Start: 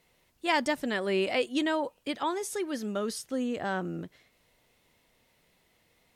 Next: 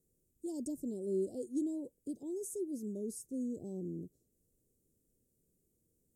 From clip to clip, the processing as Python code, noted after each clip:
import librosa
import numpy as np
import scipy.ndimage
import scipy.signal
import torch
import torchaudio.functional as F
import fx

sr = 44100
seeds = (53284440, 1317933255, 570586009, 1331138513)

y = scipy.signal.sosfilt(scipy.signal.ellip(3, 1.0, 70, [400.0, 7400.0], 'bandstop', fs=sr, output='sos'), x)
y = y * librosa.db_to_amplitude(-5.0)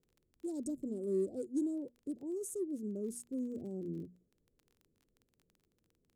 y = fx.wiener(x, sr, points=15)
y = fx.hum_notches(y, sr, base_hz=60, count=4)
y = fx.dmg_crackle(y, sr, seeds[0], per_s=23.0, level_db=-52.0)
y = y * librosa.db_to_amplitude(1.0)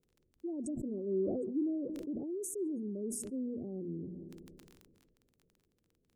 y = fx.spec_gate(x, sr, threshold_db=-30, keep='strong')
y = fx.echo_filtered(y, sr, ms=139, feedback_pct=66, hz=1000.0, wet_db=-23.0)
y = fx.sustainer(y, sr, db_per_s=28.0)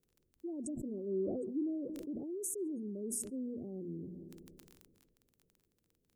y = fx.high_shelf(x, sr, hz=7200.0, db=8.0)
y = y * librosa.db_to_amplitude(-2.5)